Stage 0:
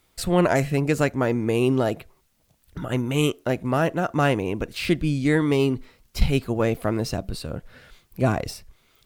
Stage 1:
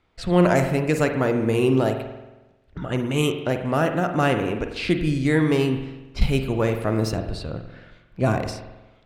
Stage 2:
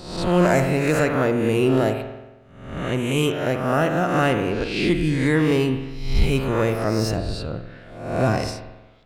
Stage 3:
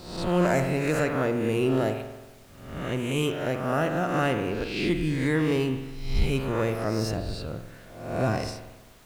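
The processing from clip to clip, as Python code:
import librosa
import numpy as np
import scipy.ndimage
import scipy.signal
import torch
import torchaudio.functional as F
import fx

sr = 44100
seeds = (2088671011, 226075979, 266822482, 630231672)

y1 = fx.rev_spring(x, sr, rt60_s=1.1, pass_ms=(45,), chirp_ms=35, drr_db=6.0)
y1 = fx.env_lowpass(y1, sr, base_hz=2600.0, full_db=-18.0)
y2 = fx.spec_swells(y1, sr, rise_s=0.77)
y2 = 10.0 ** (-5.5 / 20.0) * np.tanh(y2 / 10.0 ** (-5.5 / 20.0))
y3 = fx.dmg_noise_colour(y2, sr, seeds[0], colour='pink', level_db=-49.0)
y3 = F.gain(torch.from_numpy(y3), -5.5).numpy()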